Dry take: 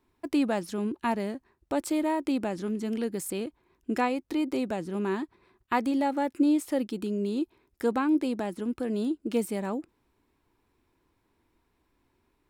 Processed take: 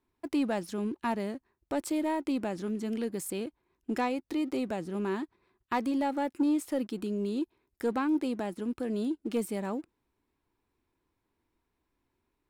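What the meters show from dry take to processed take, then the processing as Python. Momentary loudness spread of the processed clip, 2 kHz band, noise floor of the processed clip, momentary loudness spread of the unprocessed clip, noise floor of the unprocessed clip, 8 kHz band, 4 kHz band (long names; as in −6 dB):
8 LU, −3.5 dB, −82 dBFS, 8 LU, −74 dBFS, −2.5 dB, −3.0 dB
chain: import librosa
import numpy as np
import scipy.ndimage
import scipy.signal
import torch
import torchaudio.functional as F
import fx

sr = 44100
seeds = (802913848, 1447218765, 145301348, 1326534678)

y = fx.leveller(x, sr, passes=1)
y = F.gain(torch.from_numpy(y), -6.0).numpy()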